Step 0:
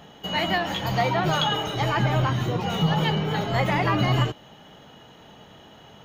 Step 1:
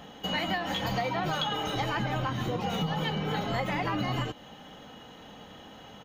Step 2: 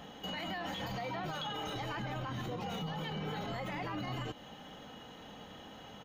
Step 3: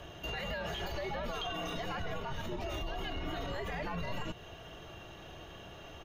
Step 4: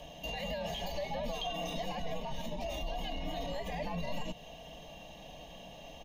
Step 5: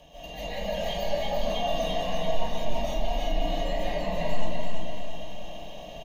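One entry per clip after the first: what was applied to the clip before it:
comb filter 3.9 ms, depth 36%; downward compressor, threshold −27 dBFS, peak gain reduction 9 dB
brickwall limiter −28.5 dBFS, peak gain reduction 10 dB; level −2.5 dB
frequency shifter −130 Hz; level +1.5 dB
phaser with its sweep stopped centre 370 Hz, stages 6; level +3 dB
on a send: repeating echo 339 ms, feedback 46%, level −3.5 dB; on the sum: comb and all-pass reverb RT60 0.82 s, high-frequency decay 0.45×, pre-delay 105 ms, DRR −9.5 dB; level −4.5 dB

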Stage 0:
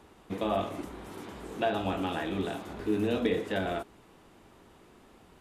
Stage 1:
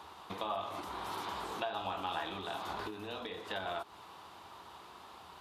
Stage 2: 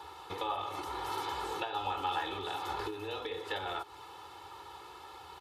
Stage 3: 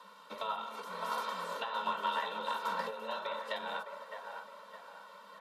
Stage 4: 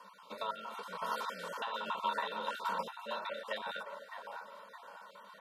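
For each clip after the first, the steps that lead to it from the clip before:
high-pass filter 79 Hz 24 dB per octave; downward compressor 12 to 1, threshold −38 dBFS, peak gain reduction 15.5 dB; octave-band graphic EQ 125/250/500/1,000/2,000/4,000/8,000 Hz −9/−11/−6/+9/−5/+7/−5 dB; level +5.5 dB
comb filter 2.3 ms, depth 99%
frequency shifter +120 Hz; delay with a band-pass on its return 611 ms, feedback 51%, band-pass 990 Hz, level −3 dB; expander for the loud parts 1.5 to 1, over −44 dBFS
time-frequency cells dropped at random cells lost 22%

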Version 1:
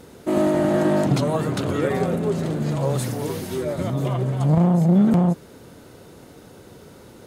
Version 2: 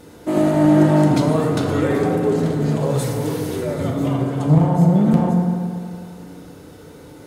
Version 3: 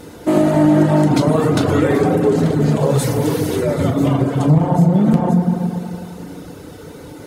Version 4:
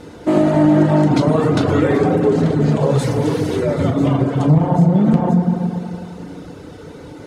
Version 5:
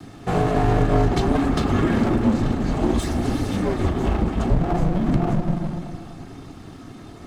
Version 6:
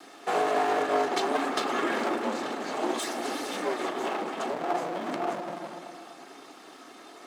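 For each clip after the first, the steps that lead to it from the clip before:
feedback delay network reverb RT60 2.2 s, low-frequency decay 1×, high-frequency decay 0.45×, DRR 0.5 dB
reverb reduction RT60 0.51 s; downward compressor 2.5 to 1, threshold −18 dBFS, peak gain reduction 6.5 dB; level +7 dB
high-frequency loss of the air 62 metres
lower of the sound and its delayed copy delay 2.1 ms; frequency shifter −190 Hz; level −2.5 dB
Bessel high-pass filter 530 Hz, order 4

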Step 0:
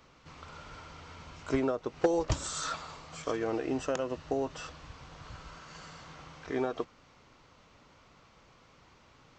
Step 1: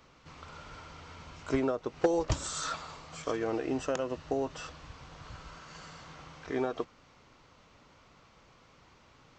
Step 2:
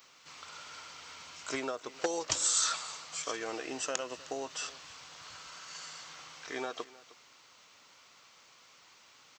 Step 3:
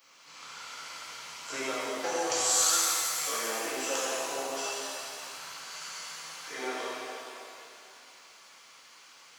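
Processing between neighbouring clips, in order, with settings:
no processing that can be heard
high-pass filter 64 Hz; spectral tilt +4.5 dB per octave; single-tap delay 310 ms −20 dB; level −2 dB
high-pass filter 300 Hz 6 dB per octave; notch filter 3,700 Hz, Q 22; reverb with rising layers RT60 2.5 s, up +7 semitones, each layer −8 dB, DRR −9.5 dB; level −5 dB

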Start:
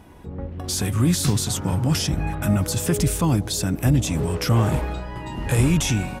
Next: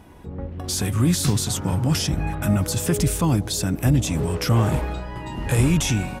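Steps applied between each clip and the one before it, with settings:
no processing that can be heard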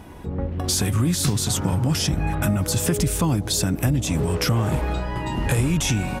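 downward compressor 4 to 1, threshold −24 dBFS, peak gain reduction 9 dB
level +5.5 dB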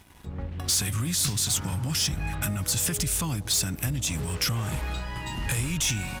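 guitar amp tone stack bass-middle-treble 5-5-5
leveller curve on the samples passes 2

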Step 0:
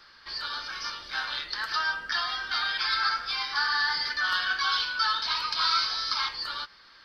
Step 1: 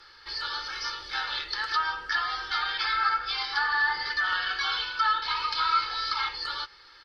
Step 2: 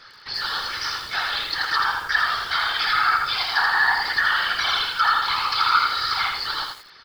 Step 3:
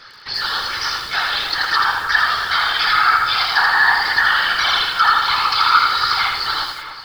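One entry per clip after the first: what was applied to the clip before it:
comb filter 2.3 ms, depth 66%; treble cut that deepens with the level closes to 2,600 Hz, closed at −21.5 dBFS
random phases in short frames; feedback echo at a low word length 82 ms, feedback 35%, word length 8 bits, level −4 dB; level +5 dB
delay that swaps between a low-pass and a high-pass 286 ms, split 1,800 Hz, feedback 53%, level −9 dB; level +5 dB

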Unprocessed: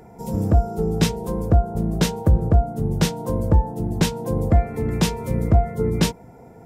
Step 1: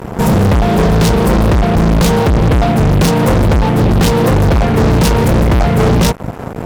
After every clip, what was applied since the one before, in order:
low-shelf EQ 350 Hz +8.5 dB
in parallel at −1 dB: downward compressor, threshold −19 dBFS, peak gain reduction 15 dB
on the sum: fuzz pedal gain 26 dB, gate −34 dBFS
level +5 dB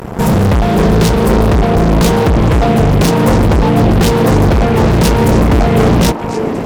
upward compression, threshold −32 dBFS
echo through a band-pass that steps 570 ms, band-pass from 330 Hz, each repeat 1.4 octaves, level −1 dB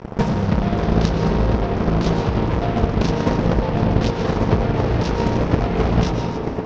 Butterworth low-pass 6,100 Hz 48 dB per octave
on a send at −1.5 dB: convolution reverb RT60 2.5 s, pre-delay 85 ms
on the sum: transient designer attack +11 dB, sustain −3 dB
level −12.5 dB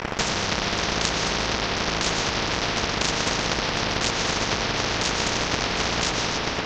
every bin compressed towards the loudest bin 4 to 1
level −4.5 dB

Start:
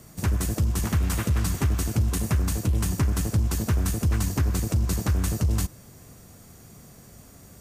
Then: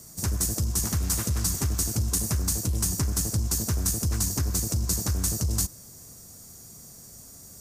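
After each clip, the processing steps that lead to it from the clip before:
high shelf with overshoot 4,000 Hz +10 dB, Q 1.5
level −4 dB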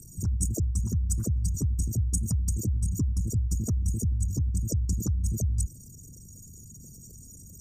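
spectral envelope exaggerated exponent 3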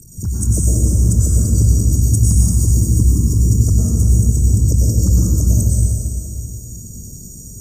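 dense smooth reverb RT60 2.9 s, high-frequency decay 0.85×, pre-delay 85 ms, DRR −7 dB
level +6 dB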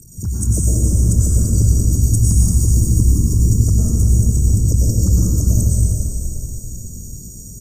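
echo with shifted repeats 424 ms, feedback 47%, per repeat −38 Hz, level −10.5 dB
level −1 dB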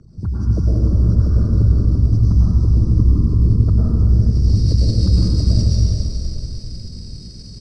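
hearing-aid frequency compression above 2,700 Hz 1.5 to 1
low-pass filter sweep 1,300 Hz → 3,400 Hz, 0:04.06–0:04.61
IMA ADPCM 88 kbit/s 22,050 Hz

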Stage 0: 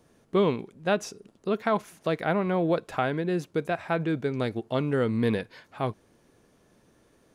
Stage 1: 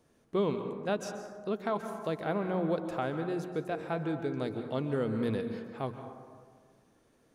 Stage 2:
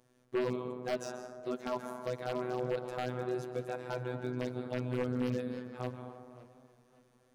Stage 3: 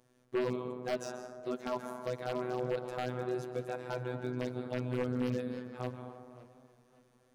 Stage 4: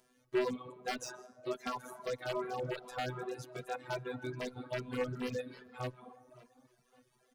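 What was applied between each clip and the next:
mains-hum notches 60/120/180 Hz; dynamic equaliser 2,100 Hz, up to −5 dB, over −43 dBFS, Q 1.1; dense smooth reverb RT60 1.7 s, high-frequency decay 0.35×, pre-delay 120 ms, DRR 7 dB; level −6 dB
phases set to zero 125 Hz; wave folding −23.5 dBFS; feedback echo with a swinging delay time 563 ms, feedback 36%, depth 108 cents, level −20 dB
no processing that can be heard
reverb reduction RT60 1.1 s; tilt shelving filter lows −3.5 dB, about 820 Hz; barber-pole flanger 2.6 ms +2.5 Hz; level +4 dB

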